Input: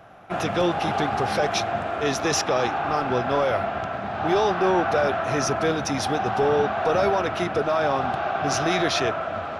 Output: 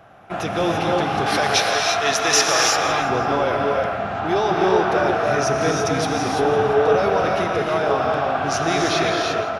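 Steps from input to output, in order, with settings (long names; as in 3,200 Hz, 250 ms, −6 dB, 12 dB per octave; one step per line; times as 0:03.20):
0:01.26–0:02.76: tilt shelving filter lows −8 dB, about 670 Hz
repeating echo 168 ms, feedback 47%, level −14.5 dB
reverb whose tail is shaped and stops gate 370 ms rising, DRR 0 dB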